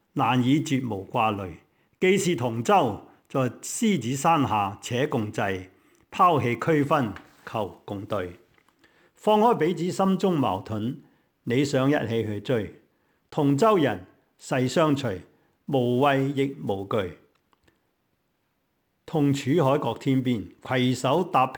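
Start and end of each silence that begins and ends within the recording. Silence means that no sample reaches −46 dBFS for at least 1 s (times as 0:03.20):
0:17.68–0:19.08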